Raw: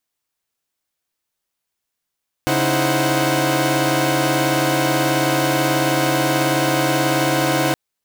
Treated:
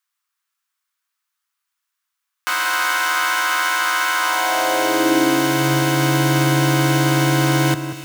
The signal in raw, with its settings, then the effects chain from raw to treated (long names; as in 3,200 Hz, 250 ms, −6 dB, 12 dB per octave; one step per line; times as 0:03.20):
held notes C#3/D#4/E4/C5/F#5 saw, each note −20 dBFS 5.27 s
parametric band 620 Hz −8.5 dB 0.72 octaves
high-pass filter sweep 1,200 Hz → 120 Hz, 0:04.16–0:05.83
on a send: delay that swaps between a low-pass and a high-pass 185 ms, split 1,900 Hz, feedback 63%, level −9 dB